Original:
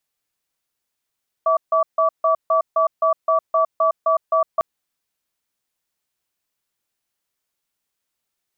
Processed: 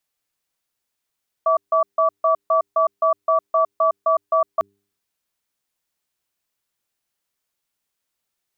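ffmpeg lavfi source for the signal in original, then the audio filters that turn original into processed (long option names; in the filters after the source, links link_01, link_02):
-f lavfi -i "aevalsrc='0.15*(sin(2*PI*649*t)+sin(2*PI*1150*t))*clip(min(mod(t,0.26),0.11-mod(t,0.26))/0.005,0,1)':duration=3.15:sample_rate=44100"
-af "bandreject=frequency=100:width_type=h:width=4,bandreject=frequency=200:width_type=h:width=4,bandreject=frequency=300:width_type=h:width=4,bandreject=frequency=400:width_type=h:width=4"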